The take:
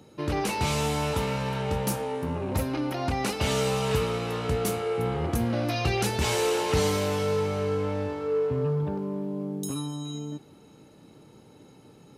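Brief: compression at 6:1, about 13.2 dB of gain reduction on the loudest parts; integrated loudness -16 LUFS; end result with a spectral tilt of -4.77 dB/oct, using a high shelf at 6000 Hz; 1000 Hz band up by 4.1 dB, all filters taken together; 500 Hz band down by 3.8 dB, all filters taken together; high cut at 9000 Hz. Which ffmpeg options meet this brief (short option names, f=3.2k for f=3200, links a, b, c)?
-af "lowpass=9k,equalizer=f=500:t=o:g=-6,equalizer=f=1k:t=o:g=7,highshelf=f=6k:g=6,acompressor=threshold=-36dB:ratio=6,volume=22.5dB"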